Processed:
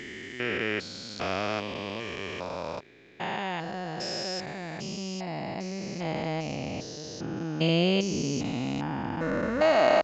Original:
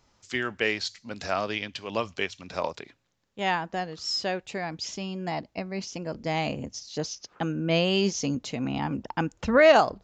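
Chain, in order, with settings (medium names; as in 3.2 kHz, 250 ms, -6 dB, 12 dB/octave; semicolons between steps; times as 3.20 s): spectrogram pixelated in time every 400 ms; 6.55–7.37 s: distance through air 51 m; trim +3 dB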